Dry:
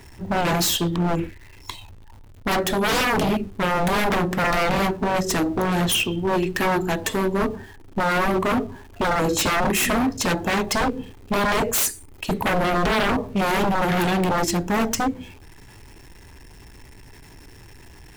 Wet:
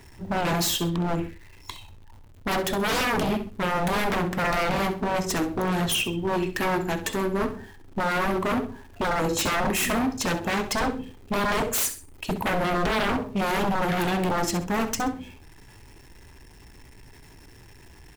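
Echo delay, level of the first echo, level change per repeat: 65 ms, -12.0 dB, -11.0 dB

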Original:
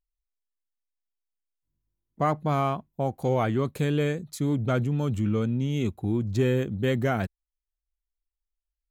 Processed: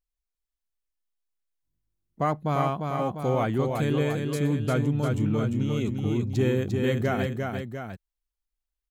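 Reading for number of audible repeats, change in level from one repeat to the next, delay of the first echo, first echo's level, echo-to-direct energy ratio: 2, -5.0 dB, 349 ms, -4.5 dB, -3.5 dB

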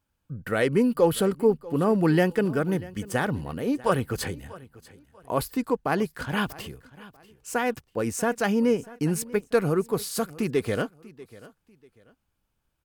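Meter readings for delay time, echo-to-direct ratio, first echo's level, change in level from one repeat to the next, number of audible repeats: 641 ms, -19.5 dB, -20.0 dB, -11.0 dB, 2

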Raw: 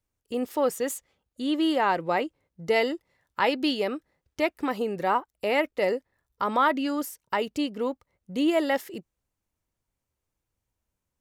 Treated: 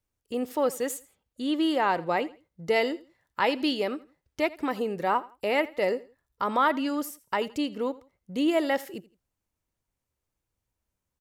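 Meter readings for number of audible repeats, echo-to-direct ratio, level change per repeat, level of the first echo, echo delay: 2, -19.5 dB, -11.0 dB, -20.0 dB, 83 ms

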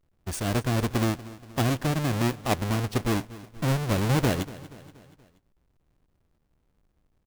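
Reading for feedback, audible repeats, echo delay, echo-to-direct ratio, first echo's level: 53%, 4, 238 ms, -16.5 dB, -18.0 dB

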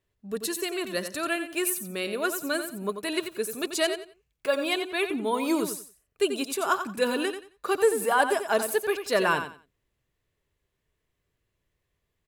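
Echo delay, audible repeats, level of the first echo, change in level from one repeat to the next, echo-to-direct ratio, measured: 89 ms, 3, -9.0 dB, -13.0 dB, -9.0 dB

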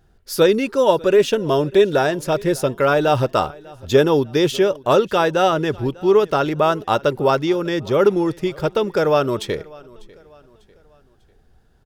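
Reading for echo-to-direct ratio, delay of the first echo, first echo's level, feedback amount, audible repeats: -22.5 dB, 596 ms, -23.5 dB, 42%, 2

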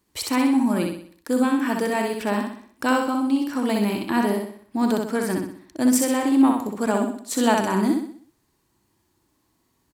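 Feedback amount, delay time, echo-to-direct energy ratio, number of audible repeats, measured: 44%, 63 ms, -2.5 dB, 5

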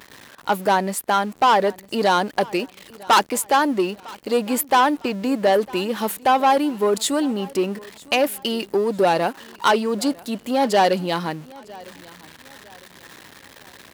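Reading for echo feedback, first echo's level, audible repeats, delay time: 37%, -22.5 dB, 2, 954 ms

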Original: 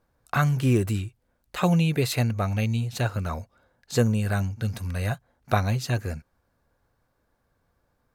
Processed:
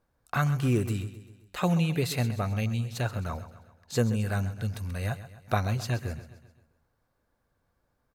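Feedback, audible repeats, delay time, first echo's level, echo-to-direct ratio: 50%, 4, 131 ms, -14.0 dB, -12.5 dB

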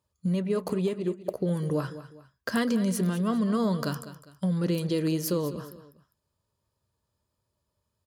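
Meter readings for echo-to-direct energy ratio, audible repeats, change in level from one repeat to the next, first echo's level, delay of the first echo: -13.5 dB, 2, -8.5 dB, -14.0 dB, 202 ms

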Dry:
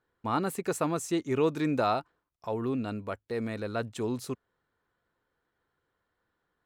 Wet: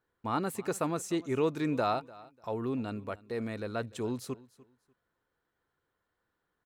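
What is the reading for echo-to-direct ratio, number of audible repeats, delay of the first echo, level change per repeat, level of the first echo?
-21.0 dB, 2, 296 ms, -13.0 dB, -21.0 dB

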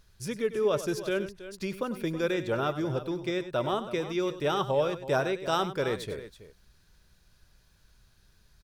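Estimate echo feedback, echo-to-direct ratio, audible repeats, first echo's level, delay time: no regular repeats, -10.5 dB, 2, -13.0 dB, 97 ms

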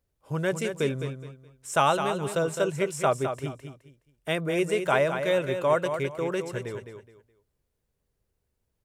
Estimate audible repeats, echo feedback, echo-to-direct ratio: 3, 26%, -7.5 dB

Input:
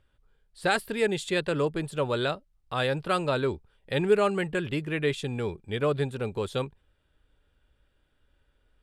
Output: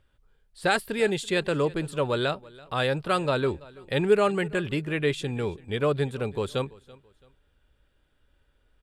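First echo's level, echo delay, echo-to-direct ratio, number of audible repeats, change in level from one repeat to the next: -22.0 dB, 333 ms, -21.5 dB, 2, -10.0 dB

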